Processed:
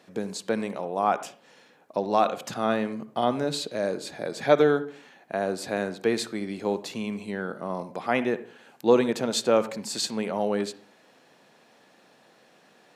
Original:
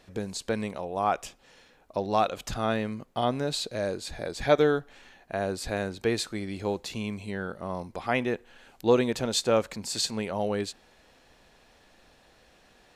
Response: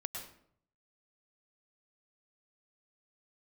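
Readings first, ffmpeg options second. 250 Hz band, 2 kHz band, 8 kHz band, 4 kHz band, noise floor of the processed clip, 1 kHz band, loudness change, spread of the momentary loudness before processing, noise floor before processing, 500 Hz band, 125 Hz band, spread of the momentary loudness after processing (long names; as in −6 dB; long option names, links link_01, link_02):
+2.5 dB, +1.5 dB, 0.0 dB, −0.5 dB, −59 dBFS, +2.5 dB, +2.0 dB, 11 LU, −60 dBFS, +2.5 dB, −3.0 dB, 11 LU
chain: -filter_complex "[0:a]highpass=frequency=150:width=0.5412,highpass=frequency=150:width=1.3066,asplit=2[link_01][link_02];[1:a]atrim=start_sample=2205,asetrate=74970,aresample=44100,lowpass=2300[link_03];[link_02][link_03]afir=irnorm=-1:irlink=0,volume=-2dB[link_04];[link_01][link_04]amix=inputs=2:normalize=0"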